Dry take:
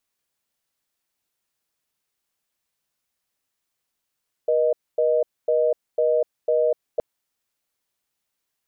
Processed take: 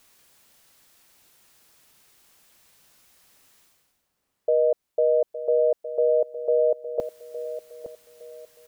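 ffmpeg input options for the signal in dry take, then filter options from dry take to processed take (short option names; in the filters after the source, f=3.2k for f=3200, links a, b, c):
-f lavfi -i "aevalsrc='0.106*(sin(2*PI*480*t)+sin(2*PI*620*t))*clip(min(mod(t,0.5),0.25-mod(t,0.5))/0.005,0,1)':d=2.52:s=44100"
-filter_complex "[0:a]areverse,acompressor=mode=upward:threshold=-41dB:ratio=2.5,areverse,asplit=2[a][b];[b]adelay=862,lowpass=f=890:p=1,volume=-11dB,asplit=2[c][d];[d]adelay=862,lowpass=f=890:p=1,volume=0.35,asplit=2[e][f];[f]adelay=862,lowpass=f=890:p=1,volume=0.35,asplit=2[g][h];[h]adelay=862,lowpass=f=890:p=1,volume=0.35[i];[a][c][e][g][i]amix=inputs=5:normalize=0"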